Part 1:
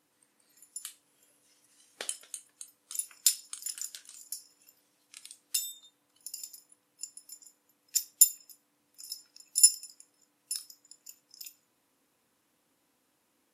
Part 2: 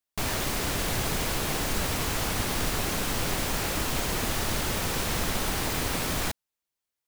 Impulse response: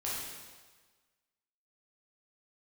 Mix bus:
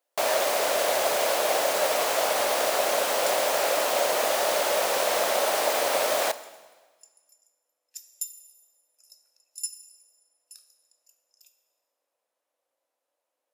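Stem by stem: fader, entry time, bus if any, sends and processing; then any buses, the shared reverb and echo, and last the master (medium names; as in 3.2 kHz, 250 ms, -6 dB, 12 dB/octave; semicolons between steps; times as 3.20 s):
-14.5 dB, 0.00 s, send -11 dB, none
+1.5 dB, 0.00 s, send -16.5 dB, none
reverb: on, RT60 1.4 s, pre-delay 7 ms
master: resonant high-pass 590 Hz, resonance Q 4.9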